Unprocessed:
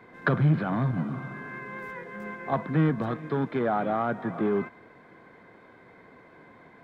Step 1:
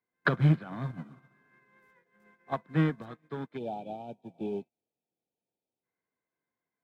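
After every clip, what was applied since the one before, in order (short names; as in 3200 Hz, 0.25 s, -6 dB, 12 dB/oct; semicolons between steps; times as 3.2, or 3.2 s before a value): spectral gain 3.57–5.83, 940–2300 Hz -28 dB; high shelf 3200 Hz +11.5 dB; upward expander 2.5:1, over -45 dBFS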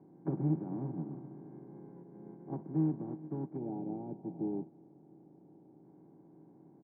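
per-bin compression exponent 0.4; vocal tract filter u; comb 5.2 ms, depth 37%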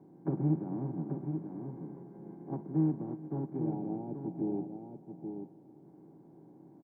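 echo 0.832 s -7 dB; gain +2 dB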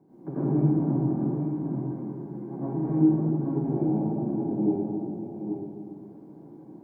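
reverb RT60 1.9 s, pre-delay 79 ms, DRR -11.5 dB; gain -3.5 dB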